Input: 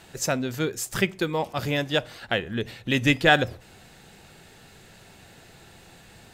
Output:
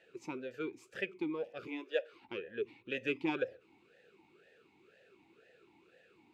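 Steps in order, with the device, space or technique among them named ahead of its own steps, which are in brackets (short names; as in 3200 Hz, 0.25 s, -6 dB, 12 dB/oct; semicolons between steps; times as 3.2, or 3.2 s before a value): 1.67–2.13 HPF 350 Hz 24 dB/oct; talk box (tube stage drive 8 dB, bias 0.4; vowel sweep e-u 2 Hz)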